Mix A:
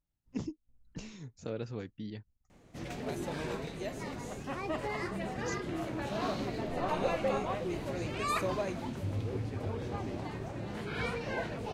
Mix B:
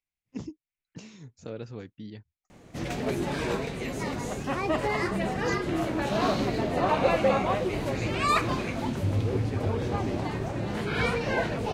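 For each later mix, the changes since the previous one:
second voice: add resonant high-pass 2.2 kHz, resonance Q 4.5; background +8.5 dB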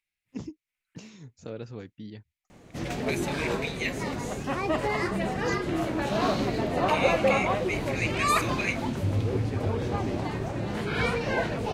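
second voice +10.5 dB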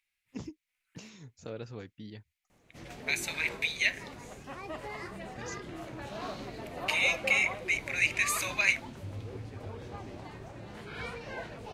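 second voice +4.5 dB; background -11.5 dB; master: add peaking EQ 220 Hz -4.5 dB 2.5 oct

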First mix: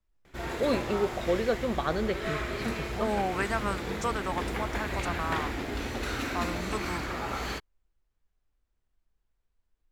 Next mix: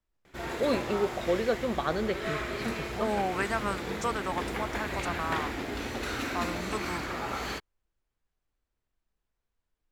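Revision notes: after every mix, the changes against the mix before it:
master: add bass shelf 71 Hz -9 dB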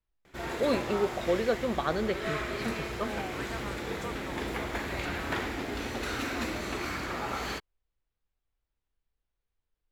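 second voice -11.0 dB

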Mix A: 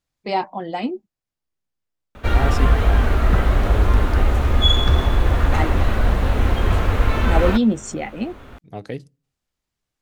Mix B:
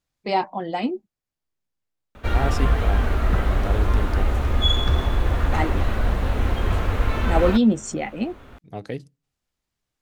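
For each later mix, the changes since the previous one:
second voice: send -6.5 dB; background -4.0 dB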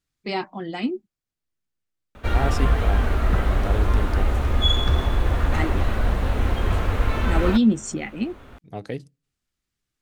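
first voice: add high-order bell 690 Hz -8.5 dB 1.3 oct; master: add peaking EQ 8.8 kHz +2 dB 0.26 oct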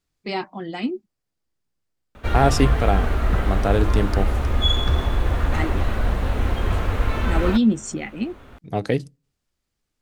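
second voice +9.5 dB

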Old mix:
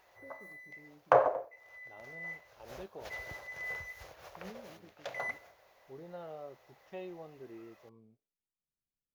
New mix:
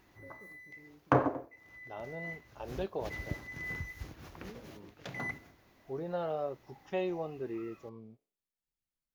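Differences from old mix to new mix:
second voice +10.5 dB; background: add resonant low shelf 390 Hz +12.5 dB, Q 3

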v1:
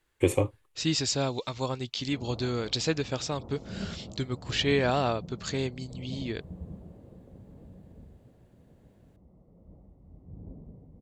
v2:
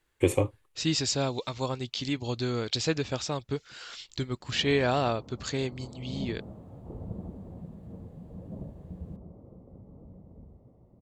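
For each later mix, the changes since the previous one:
background: entry +2.40 s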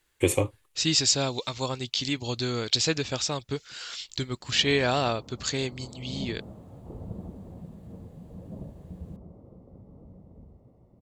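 master: add treble shelf 2.4 kHz +8.5 dB

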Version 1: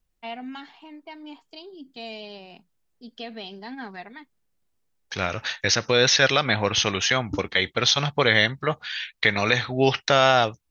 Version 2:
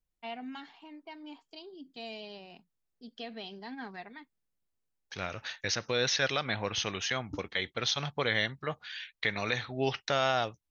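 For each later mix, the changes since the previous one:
first voice -5.5 dB; second voice -10.5 dB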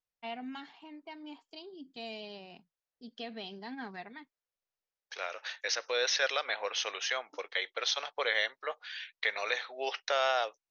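second voice: add elliptic band-pass 490–6100 Hz, stop band 60 dB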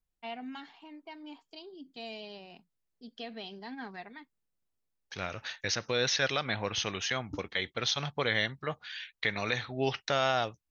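second voice: remove elliptic band-pass 490–6100 Hz, stop band 60 dB

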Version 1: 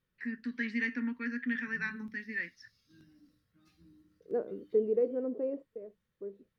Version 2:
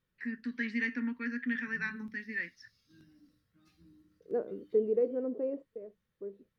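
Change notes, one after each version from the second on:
no change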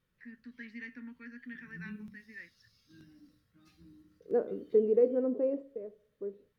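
first voice -12.0 dB; background +3.5 dB; reverb: on, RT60 0.65 s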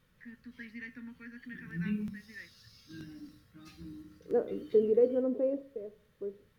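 background +10.5 dB

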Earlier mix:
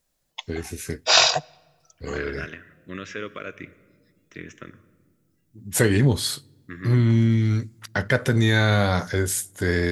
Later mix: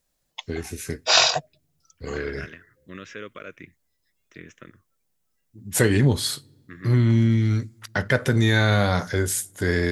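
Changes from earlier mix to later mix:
second voice: send off; background: send off

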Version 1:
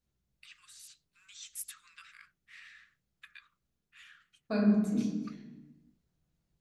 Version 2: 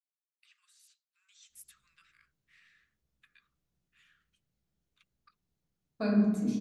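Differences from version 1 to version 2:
first voice -11.5 dB; second voice: entry +1.50 s

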